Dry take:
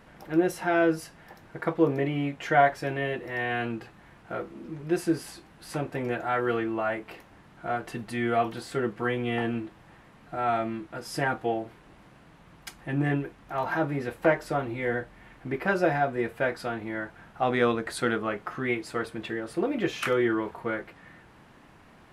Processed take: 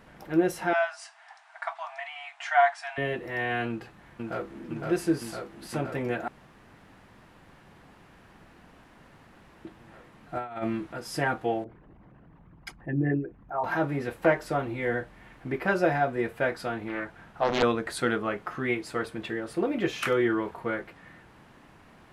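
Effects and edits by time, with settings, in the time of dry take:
0.73–2.98 brick-wall FIR band-pass 630–10000 Hz
3.68–4.64 echo throw 0.51 s, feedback 80%, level -2.5 dB
6.28–9.65 room tone
10.35–10.93 negative-ratio compressor -31 dBFS, ratio -0.5
11.64–13.64 formant sharpening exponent 2
16.88–17.63 Doppler distortion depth 0.87 ms

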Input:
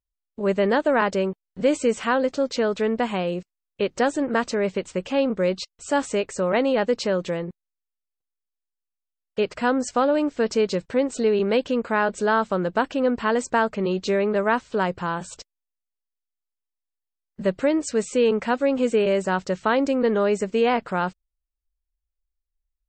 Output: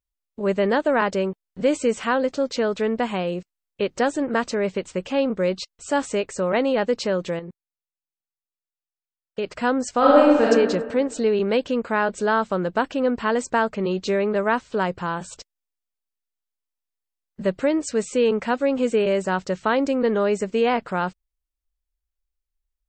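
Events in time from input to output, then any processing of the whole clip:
7.39–9.46 level quantiser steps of 12 dB
9.98–10.44 reverb throw, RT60 1.4 s, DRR -7 dB

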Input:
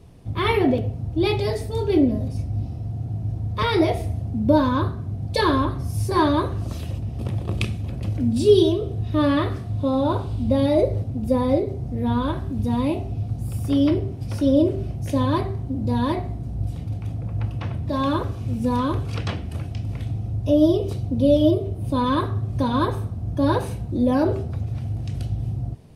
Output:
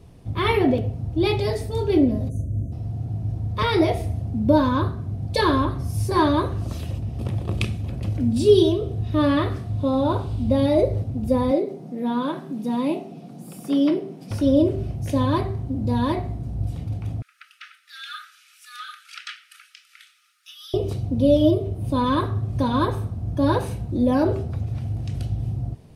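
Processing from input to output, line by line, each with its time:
2.29–2.72 spectral delete 700–5900 Hz
11.51–14.31 elliptic high-pass 160 Hz
17.22–20.74 brick-wall FIR high-pass 1200 Hz

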